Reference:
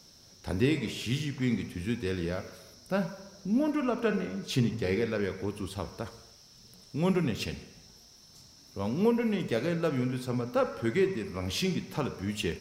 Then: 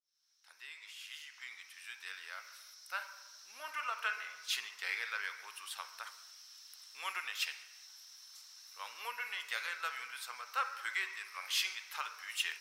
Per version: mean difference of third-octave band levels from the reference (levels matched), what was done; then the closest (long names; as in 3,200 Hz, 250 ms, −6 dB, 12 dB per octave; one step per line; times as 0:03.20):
17.0 dB: fade in at the beginning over 3.83 s
high-pass filter 1,200 Hz 24 dB per octave
dynamic equaliser 5,400 Hz, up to −4 dB, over −56 dBFS, Q 0.82
level +3 dB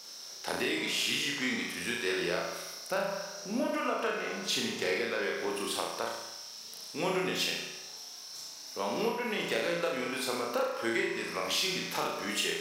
10.0 dB: Bessel high-pass filter 700 Hz, order 2
downward compressor, threshold −38 dBFS, peak gain reduction 12 dB
flutter between parallel walls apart 6 metres, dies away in 0.76 s
level +8 dB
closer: second